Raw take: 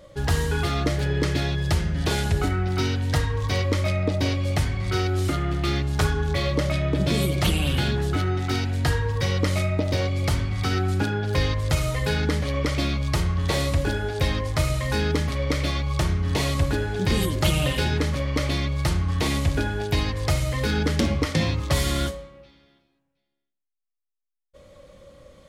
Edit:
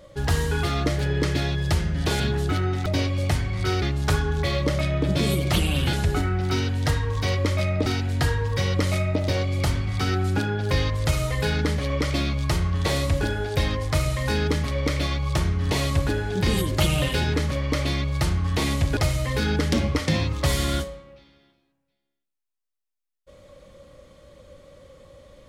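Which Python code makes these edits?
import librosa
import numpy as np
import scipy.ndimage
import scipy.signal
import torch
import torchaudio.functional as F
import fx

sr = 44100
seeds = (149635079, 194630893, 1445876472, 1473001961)

y = fx.edit(x, sr, fx.swap(start_s=2.2, length_s=1.93, other_s=7.84, other_length_s=0.66),
    fx.cut(start_s=5.09, length_s=0.64),
    fx.cut(start_s=19.61, length_s=0.63), tone=tone)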